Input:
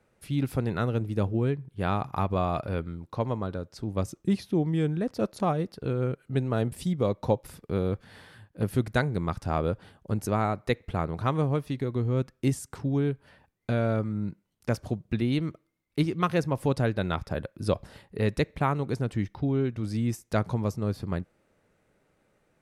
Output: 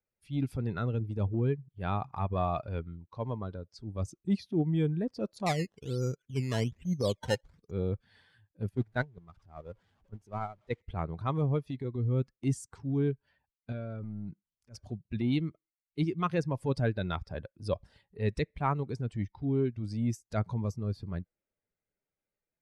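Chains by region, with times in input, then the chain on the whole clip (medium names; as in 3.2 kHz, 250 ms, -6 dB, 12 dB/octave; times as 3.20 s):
5.46–7.71 s: low-pass 2.7 kHz 24 dB/octave + decimation with a swept rate 13× 1.2 Hz
8.69–10.82 s: jump at every zero crossing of -30.5 dBFS + gate -23 dBFS, range -18 dB + treble shelf 3.3 kHz -8 dB
13.72–14.76 s: compression 10:1, threshold -28 dBFS + transient shaper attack -11 dB, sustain +5 dB
whole clip: expander on every frequency bin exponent 1.5; low-pass 7.5 kHz 12 dB/octave; transient shaper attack -7 dB, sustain 0 dB; trim +1.5 dB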